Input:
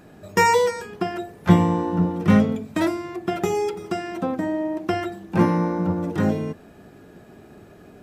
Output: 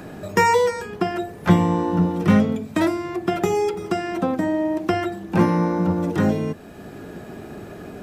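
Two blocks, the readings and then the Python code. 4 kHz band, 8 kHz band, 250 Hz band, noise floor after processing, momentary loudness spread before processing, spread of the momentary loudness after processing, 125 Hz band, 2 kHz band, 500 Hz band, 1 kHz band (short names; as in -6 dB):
+0.5 dB, -0.5 dB, +1.5 dB, -40 dBFS, 11 LU, 19 LU, +0.5 dB, +1.0 dB, +2.0 dB, +1.0 dB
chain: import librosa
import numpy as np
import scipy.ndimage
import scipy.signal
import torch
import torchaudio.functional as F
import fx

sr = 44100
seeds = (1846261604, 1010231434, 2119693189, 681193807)

y = fx.band_squash(x, sr, depth_pct=40)
y = F.gain(torch.from_numpy(y), 2.0).numpy()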